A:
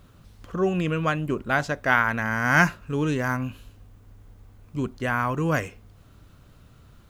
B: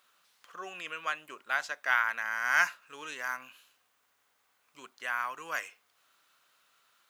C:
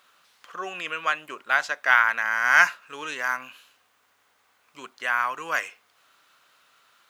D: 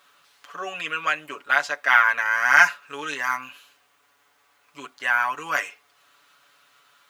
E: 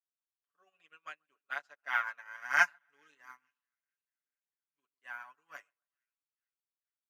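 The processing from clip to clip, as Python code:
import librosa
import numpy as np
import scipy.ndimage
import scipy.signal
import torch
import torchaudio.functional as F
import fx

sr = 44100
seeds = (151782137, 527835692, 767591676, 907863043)

y1 = scipy.signal.sosfilt(scipy.signal.butter(2, 1200.0, 'highpass', fs=sr, output='sos'), x)
y1 = y1 * librosa.db_to_amplitude(-4.0)
y2 = fx.high_shelf(y1, sr, hz=6200.0, db=-6.5)
y2 = y2 * librosa.db_to_amplitude(9.0)
y3 = y2 + 0.79 * np.pad(y2, (int(7.0 * sr / 1000.0), 0))[:len(y2)]
y4 = fx.echo_split(y3, sr, split_hz=1700.0, low_ms=135, high_ms=438, feedback_pct=52, wet_db=-15.0)
y4 = fx.upward_expand(y4, sr, threshold_db=-40.0, expansion=2.5)
y4 = y4 * librosa.db_to_amplitude(-9.0)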